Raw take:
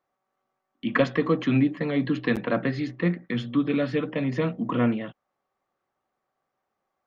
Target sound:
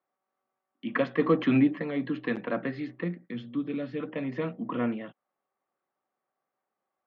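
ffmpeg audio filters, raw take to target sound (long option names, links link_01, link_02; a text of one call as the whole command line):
ffmpeg -i in.wav -filter_complex "[0:a]highpass=170,lowpass=3200,asplit=3[link_01][link_02][link_03];[link_01]afade=type=out:start_time=1.18:duration=0.02[link_04];[link_02]acontrast=46,afade=type=in:start_time=1.18:duration=0.02,afade=type=out:start_time=1.8:duration=0.02[link_05];[link_03]afade=type=in:start_time=1.8:duration=0.02[link_06];[link_04][link_05][link_06]amix=inputs=3:normalize=0,asettb=1/sr,asplit=3[link_07][link_08][link_09];[link_07]atrim=end=3.044[link_10];[link_08]atrim=start=3.04:end=4,asetpts=PTS-STARTPTS,afade=type=in:duration=0.004:curve=qsin,afade=type=out:start_time=0.956:duration=0.004:curve=qsin,equalizer=frequency=1200:width=0.46:gain=-8[link_11];[link_09]atrim=start=3.996[link_12];[link_10][link_11]acrossfade=duration=0.004:curve1=hsin:curve2=qsin[link_13];[link_13][link_12]acrossfade=duration=0.004:curve1=qsin:curve2=hsin,volume=-5dB" out.wav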